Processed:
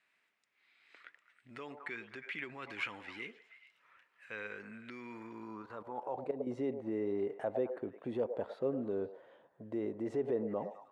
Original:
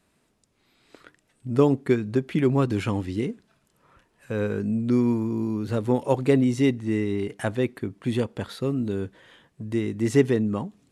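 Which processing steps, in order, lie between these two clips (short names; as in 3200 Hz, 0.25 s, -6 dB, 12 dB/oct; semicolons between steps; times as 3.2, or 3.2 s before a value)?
5.62–6.47 level quantiser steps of 16 dB; delay with a stepping band-pass 0.106 s, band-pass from 640 Hz, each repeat 0.7 oct, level -9 dB; limiter -18 dBFS, peak gain reduction 11 dB; band-pass sweep 2100 Hz -> 590 Hz, 5.12–6.38; gain +1.5 dB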